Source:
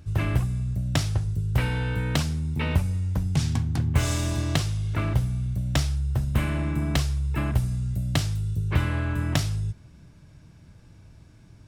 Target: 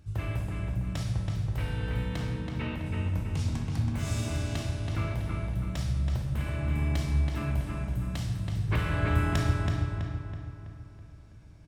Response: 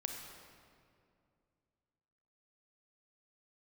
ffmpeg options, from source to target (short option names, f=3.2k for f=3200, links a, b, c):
-filter_complex "[0:a]alimiter=limit=-16dB:level=0:latency=1:release=309,asplit=3[a][b][c];[a]afade=t=out:st=2.15:d=0.02[d];[b]bass=f=250:g=-3,treble=f=4k:g=-8,afade=t=in:st=2.15:d=0.02,afade=t=out:st=2.85:d=0.02[e];[c]afade=t=in:st=2.85:d=0.02[f];[d][e][f]amix=inputs=3:normalize=0,asettb=1/sr,asplit=3[g][h][i];[g]atrim=end=8.694[j];[h]atrim=start=8.69:end=9.36,asetpts=PTS-STARTPTS,afade=t=in:d=0.004:c=qsin,afade=t=out:st=0.666:d=0.004:c=qsin,acontrast=72[k];[i]atrim=start=9.356[l];[j][k]acrossfade=d=0.004:c1=hsin:c2=qsin[m];[m][l]acrossfade=d=0.004:c1=qsin:c2=hsin,asplit=2[n][o];[o]adelay=327,lowpass=f=3.5k:p=1,volume=-3dB,asplit=2[p][q];[q]adelay=327,lowpass=f=3.5k:p=1,volume=0.5,asplit=2[r][s];[s]adelay=327,lowpass=f=3.5k:p=1,volume=0.5,asplit=2[t][u];[u]adelay=327,lowpass=f=3.5k:p=1,volume=0.5,asplit=2[v][w];[w]adelay=327,lowpass=f=3.5k:p=1,volume=0.5,asplit=2[x][y];[y]adelay=327,lowpass=f=3.5k:p=1,volume=0.5,asplit=2[z][aa];[aa]adelay=327,lowpass=f=3.5k:p=1,volume=0.5[ab];[n][p][r][t][v][x][z][ab]amix=inputs=8:normalize=0[ac];[1:a]atrim=start_sample=2205,asetrate=83790,aresample=44100[ad];[ac][ad]afir=irnorm=-1:irlink=0"